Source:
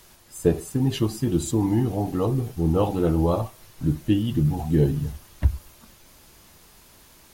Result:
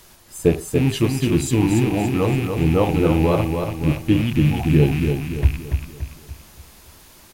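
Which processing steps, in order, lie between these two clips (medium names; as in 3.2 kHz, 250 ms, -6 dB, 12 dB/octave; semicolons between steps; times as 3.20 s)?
rattle on loud lows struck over -27 dBFS, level -25 dBFS; feedback delay 286 ms, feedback 44%, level -5.5 dB; trim +3.5 dB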